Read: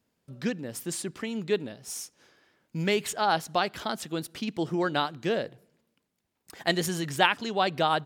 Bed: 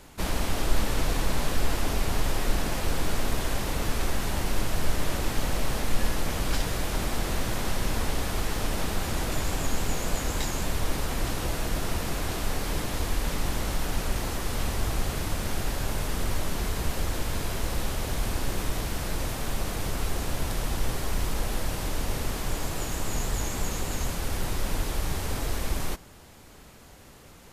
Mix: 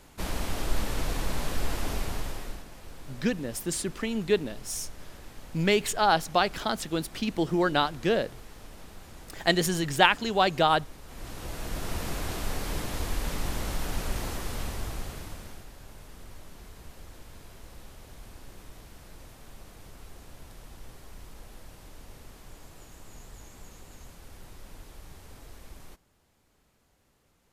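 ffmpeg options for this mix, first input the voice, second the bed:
ffmpeg -i stem1.wav -i stem2.wav -filter_complex "[0:a]adelay=2800,volume=2.5dB[link_01];[1:a]volume=11.5dB,afade=type=out:start_time=1.94:duration=0.71:silence=0.188365,afade=type=in:start_time=11.04:duration=1:silence=0.16788,afade=type=out:start_time=14.25:duration=1.42:silence=0.16788[link_02];[link_01][link_02]amix=inputs=2:normalize=0" out.wav

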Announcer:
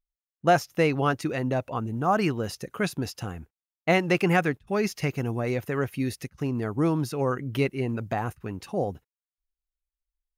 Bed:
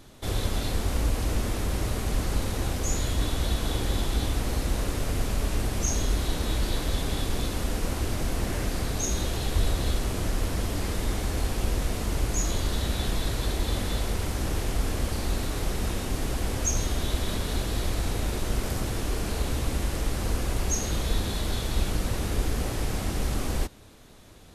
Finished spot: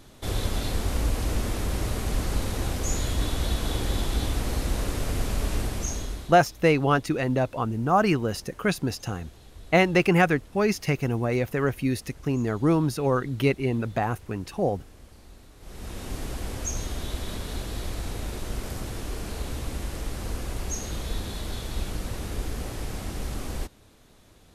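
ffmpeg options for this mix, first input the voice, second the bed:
ffmpeg -i stem1.wav -i stem2.wav -filter_complex "[0:a]adelay=5850,volume=2.5dB[link_01];[1:a]volume=17dB,afade=type=out:start_time=5.56:duration=0.84:silence=0.0841395,afade=type=in:start_time=15.59:duration=0.53:silence=0.141254[link_02];[link_01][link_02]amix=inputs=2:normalize=0" out.wav

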